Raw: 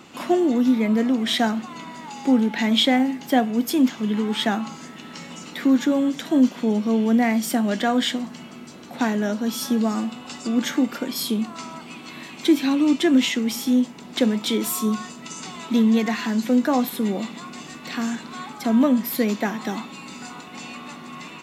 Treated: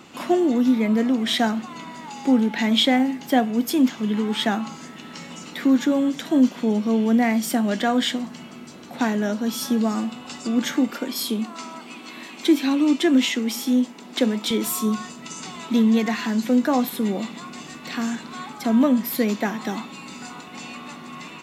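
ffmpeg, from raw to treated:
-filter_complex "[0:a]asettb=1/sr,asplit=3[s0][s1][s2];[s0]atrim=end=10.904[s3];[s1]atrim=start=10.9:end=14.51,asetpts=PTS-STARTPTS,afade=t=in:d=0.004:c=qsin,afade=t=out:st=3.606:d=0.004:c=qsin,highpass=f=200:w=0.5412,highpass=f=200:w=1.3066[s4];[s2]atrim=start=14.506[s5];[s3][s4]acrossfade=d=0.004:c1=hsin:c2=qsin[s6];[s6][s5]acrossfade=d=0.004:c1=qsin:c2=hsin"

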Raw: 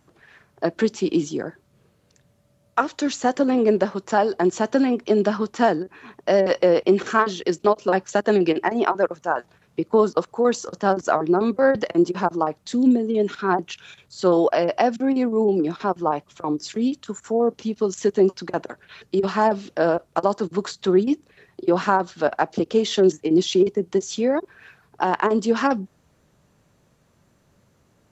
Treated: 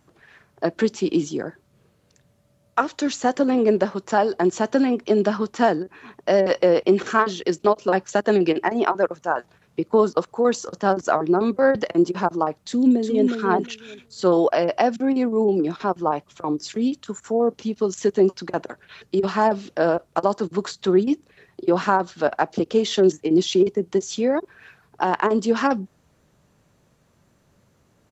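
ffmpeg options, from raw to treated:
-filter_complex "[0:a]asplit=2[s0][s1];[s1]afade=t=in:st=12.59:d=0.01,afade=t=out:st=13.3:d=0.01,aecho=0:1:360|720|1080:0.530884|0.0796327|0.0119449[s2];[s0][s2]amix=inputs=2:normalize=0"

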